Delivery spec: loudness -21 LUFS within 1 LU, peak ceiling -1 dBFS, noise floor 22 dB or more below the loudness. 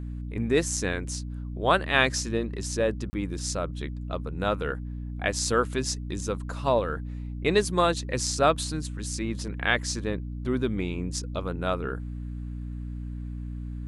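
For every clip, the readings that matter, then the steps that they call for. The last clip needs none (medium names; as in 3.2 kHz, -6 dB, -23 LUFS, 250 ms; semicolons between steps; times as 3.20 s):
dropouts 1; longest dropout 30 ms; hum 60 Hz; highest harmonic 300 Hz; hum level -32 dBFS; loudness -28.5 LUFS; peak level -5.0 dBFS; loudness target -21.0 LUFS
-> interpolate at 3.10 s, 30 ms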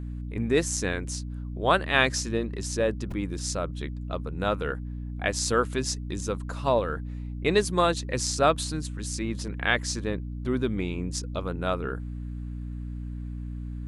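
dropouts 0; hum 60 Hz; highest harmonic 300 Hz; hum level -32 dBFS
-> hum notches 60/120/180/240/300 Hz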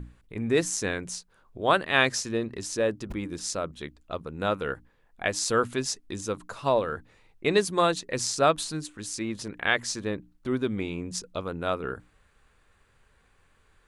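hum not found; loudness -28.5 LUFS; peak level -5.5 dBFS; loudness target -21.0 LUFS
-> trim +7.5 dB; peak limiter -1 dBFS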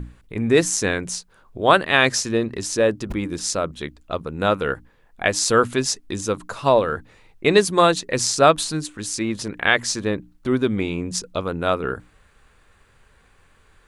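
loudness -21.0 LUFS; peak level -1.0 dBFS; noise floor -57 dBFS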